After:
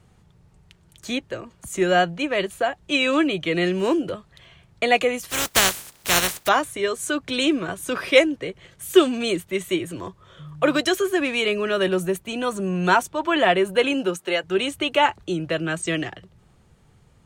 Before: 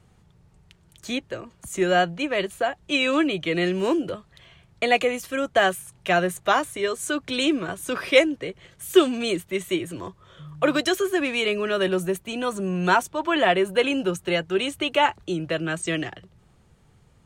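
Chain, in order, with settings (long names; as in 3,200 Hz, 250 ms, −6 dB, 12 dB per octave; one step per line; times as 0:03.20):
0:05.29–0:06.47: compressing power law on the bin magnitudes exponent 0.23
0:13.93–0:14.43: high-pass filter 140 Hz → 450 Hz 12 dB per octave
level +1.5 dB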